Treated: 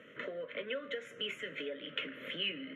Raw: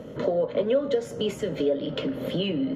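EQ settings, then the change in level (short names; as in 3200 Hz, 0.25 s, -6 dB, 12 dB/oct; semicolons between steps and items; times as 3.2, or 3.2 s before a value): band-pass 2200 Hz, Q 1.5; fixed phaser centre 2000 Hz, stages 4; +4.0 dB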